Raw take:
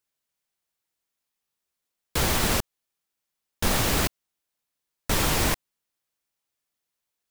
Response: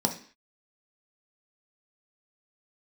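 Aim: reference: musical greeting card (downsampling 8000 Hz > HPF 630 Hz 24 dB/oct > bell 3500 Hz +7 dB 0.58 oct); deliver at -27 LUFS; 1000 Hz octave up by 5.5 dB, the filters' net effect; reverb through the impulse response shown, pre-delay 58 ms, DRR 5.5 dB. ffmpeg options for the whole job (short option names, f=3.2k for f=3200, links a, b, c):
-filter_complex "[0:a]equalizer=f=1k:t=o:g=7,asplit=2[a][b];[1:a]atrim=start_sample=2205,adelay=58[c];[b][c]afir=irnorm=-1:irlink=0,volume=-14.5dB[d];[a][d]amix=inputs=2:normalize=0,aresample=8000,aresample=44100,highpass=f=630:w=0.5412,highpass=f=630:w=1.3066,equalizer=f=3.5k:t=o:w=0.58:g=7,volume=-2dB"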